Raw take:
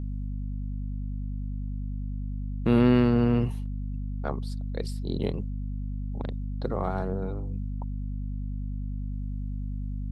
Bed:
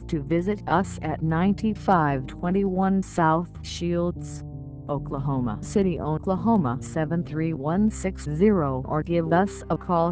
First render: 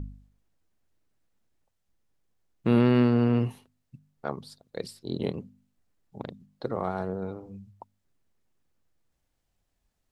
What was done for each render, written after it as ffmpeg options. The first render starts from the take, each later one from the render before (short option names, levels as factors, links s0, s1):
-af "bandreject=f=50:t=h:w=4,bandreject=f=100:t=h:w=4,bandreject=f=150:t=h:w=4,bandreject=f=200:t=h:w=4,bandreject=f=250:t=h:w=4"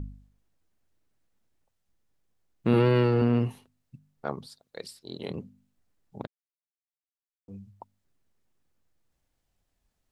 -filter_complex "[0:a]asettb=1/sr,asplit=3[s0][s1][s2];[s0]atrim=end=2.734[s3];[s1]atrim=start=2.73:end=3.22,asetpts=PTS-STARTPTS,afade=t=in:d=0.004:c=qsin,afade=t=out:st=0.486:d=0.004:c=qsin,aecho=1:1:6.1:0.65,atrim=end_sample=21609[s4];[s2]atrim=start=3.216[s5];[s3][s4]acrossfade=d=0.004:c1=hsin:c2=qsin[s6];[s6][s5]acrossfade=d=0.004:c1=qsin:c2=hsin,asettb=1/sr,asplit=3[s7][s8][s9];[s7]atrim=end=4.464[s10];[s8]atrim=start=4.46:end=5.3,asetpts=PTS-STARTPTS,afade=t=in:d=0.004:c=qsin,afade=t=out:st=0.836:d=0.004:c=qsin,lowshelf=f=470:g=-12[s11];[s9]atrim=start=5.296[s12];[s10][s11]acrossfade=d=0.004:c1=hsin:c2=qsin[s13];[s13][s12]acrossfade=d=0.004:c1=qsin:c2=hsin,asplit=3[s14][s15][s16];[s14]atrim=end=6.27,asetpts=PTS-STARTPTS,afade=t=out:st=6.266:d=0.004:c=hsin[s17];[s15]atrim=start=6.27:end=7.48,asetpts=PTS-STARTPTS,volume=0[s18];[s16]atrim=start=7.48,asetpts=PTS-STARTPTS,afade=t=in:d=0.004:c=hsin[s19];[s17][s18][s19]concat=n=3:v=0:a=1"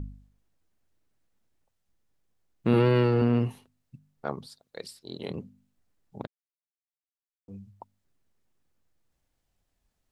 -af anull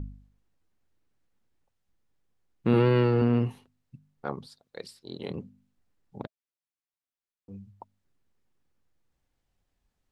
-af "highshelf=f=6300:g=-7.5,bandreject=f=640:w=12"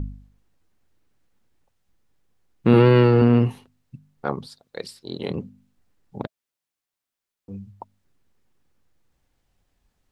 -af "volume=2.37"